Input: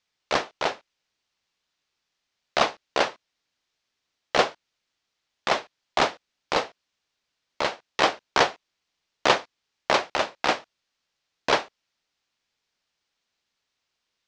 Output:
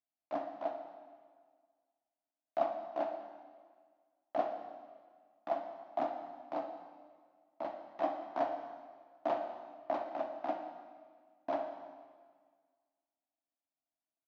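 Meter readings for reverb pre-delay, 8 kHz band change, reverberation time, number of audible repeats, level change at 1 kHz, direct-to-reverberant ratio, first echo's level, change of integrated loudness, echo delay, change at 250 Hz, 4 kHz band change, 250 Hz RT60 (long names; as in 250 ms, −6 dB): 4 ms, below −35 dB, 1.7 s, 1, −11.5 dB, 4.0 dB, −12.5 dB, −13.5 dB, 61 ms, −9.0 dB, −32.0 dB, 1.8 s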